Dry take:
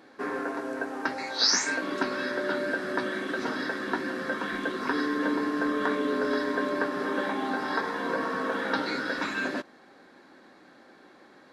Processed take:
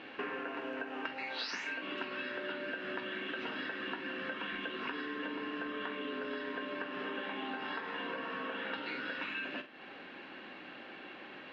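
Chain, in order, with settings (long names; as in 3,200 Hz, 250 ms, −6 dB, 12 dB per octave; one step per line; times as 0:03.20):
low-pass with resonance 2,800 Hz, resonance Q 8.7
flutter between parallel walls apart 7.8 metres, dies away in 0.22 s
downward compressor 12 to 1, threshold −39 dBFS, peak gain reduction 19.5 dB
level +2.5 dB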